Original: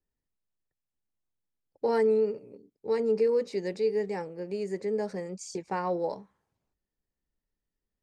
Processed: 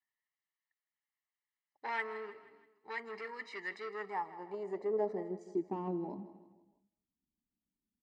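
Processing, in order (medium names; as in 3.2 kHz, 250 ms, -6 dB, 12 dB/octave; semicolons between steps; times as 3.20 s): peaking EQ 150 Hz -4 dB 1.5 oct; comb 1 ms, depth 93%; dynamic bell 420 Hz, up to +6 dB, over -44 dBFS, Q 2.1; in parallel at -1.5 dB: level held to a coarse grid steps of 10 dB; on the sum: saturation -21.5 dBFS, distortion -14 dB; band-pass sweep 1.8 kHz -> 240 Hz, 3.63–5.91 s; feedback delay 160 ms, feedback 50%, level -16 dB; on a send at -20.5 dB: reverberation, pre-delay 161 ms; on the sum: trim +1 dB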